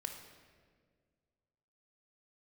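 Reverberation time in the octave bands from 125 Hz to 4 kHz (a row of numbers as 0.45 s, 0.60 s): 2.4 s, 2.2 s, 2.1 s, 1.5 s, 1.4 s, 1.2 s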